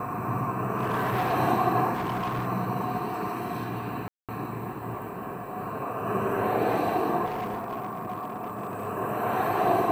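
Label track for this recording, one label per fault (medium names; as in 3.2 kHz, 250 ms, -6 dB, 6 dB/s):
0.780000	1.340000	clipped -22.5 dBFS
1.930000	2.470000	clipped -26 dBFS
4.080000	4.290000	dropout 207 ms
7.250000	8.880000	clipped -28 dBFS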